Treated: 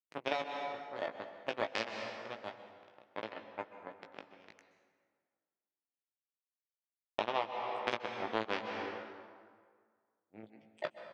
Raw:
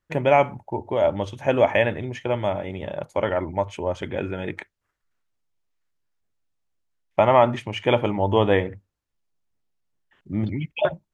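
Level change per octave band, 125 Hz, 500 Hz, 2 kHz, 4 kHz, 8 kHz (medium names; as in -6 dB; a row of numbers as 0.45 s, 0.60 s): -30.5 dB, -19.5 dB, -12.0 dB, -9.5 dB, no reading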